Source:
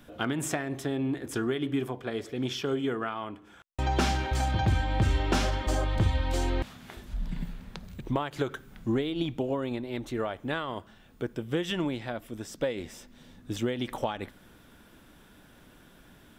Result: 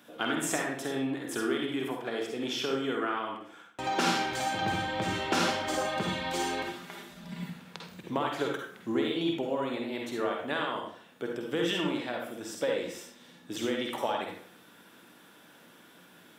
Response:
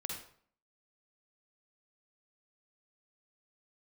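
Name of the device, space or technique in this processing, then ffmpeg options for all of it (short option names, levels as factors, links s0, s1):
bathroom: -filter_complex "[0:a]highpass=150[s0];[1:a]atrim=start_sample=2205[s1];[s0][s1]afir=irnorm=-1:irlink=0,highpass=f=470:p=1,lowshelf=f=350:g=3,asettb=1/sr,asplit=3[s2][s3][s4];[s2]atrim=end=5.844[s5];[s3]atrim=start=5.84:end=7.5,asetpts=PTS-STARTPTS,afade=t=in:d=0.004:c=qsin,afade=t=out:st=1.656:d=0.004:c=qsin,aecho=1:1:5:0.57,atrim=end_sample=73206[s6];[s4]atrim=start=7.496[s7];[s5][s6]acrossfade=d=0.004:c1=hsin:c2=qsin[s8];[s8][s7]acrossfade=d=0.004:c1=qsin:c2=hsin,volume=1.41"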